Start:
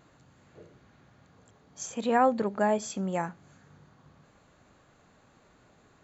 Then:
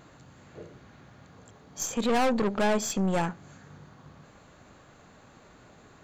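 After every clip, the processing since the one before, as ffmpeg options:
-af "aeval=exprs='(tanh(35.5*val(0)+0.5)-tanh(0.5))/35.5':c=same,volume=9dB"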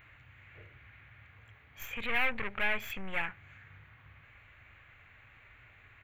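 -af "firequalizer=gain_entry='entry(110,0);entry(160,-19);entry(960,-10);entry(2200,10);entry(4800,-23);entry(7400,-23);entry(13000,0)':delay=0.05:min_phase=1"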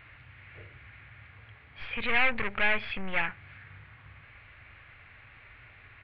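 -af "aresample=11025,aresample=44100,volume=5dB"

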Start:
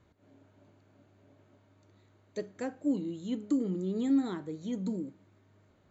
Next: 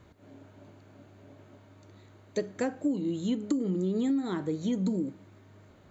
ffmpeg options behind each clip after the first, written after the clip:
-af "acompressor=threshold=-34dB:ratio=12,volume=9dB"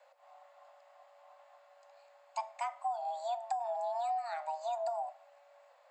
-af "afreqshift=470,volume=-7dB"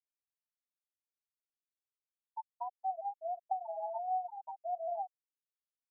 -filter_complex "[0:a]flanger=delay=1.1:depth=4.4:regen=63:speed=0.59:shape=sinusoidal,asplit=2[a][b];[b]adelay=565.6,volume=-20dB,highshelf=f=4k:g=-12.7[c];[a][c]amix=inputs=2:normalize=0,afftfilt=real='re*gte(hypot(re,im),0.0631)':imag='im*gte(hypot(re,im),0.0631)':win_size=1024:overlap=0.75,volume=2.5dB"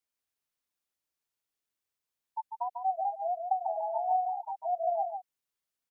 -af "aecho=1:1:146:0.501,volume=6dB"

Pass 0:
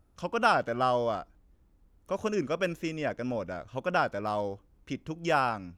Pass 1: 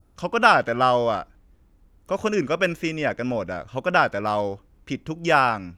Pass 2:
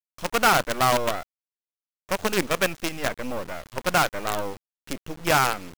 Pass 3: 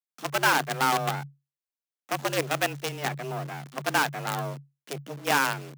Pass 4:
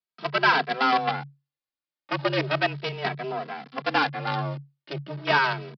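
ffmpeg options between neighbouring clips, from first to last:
-af "adynamicequalizer=threshold=0.00891:dfrequency=2100:dqfactor=1:tfrequency=2100:tqfactor=1:attack=5:release=100:ratio=0.375:range=2.5:mode=boostabove:tftype=bell,volume=6.5dB"
-af "aresample=16000,asoftclip=type=tanh:threshold=-14.5dB,aresample=44100,acrusher=bits=4:dc=4:mix=0:aa=0.000001"
-af "afreqshift=140,volume=-3.5dB"
-filter_complex "[0:a]aresample=11025,aresample=44100,asplit=2[a][b];[b]adelay=2.7,afreqshift=0.37[c];[a][c]amix=inputs=2:normalize=1,volume=5.5dB"

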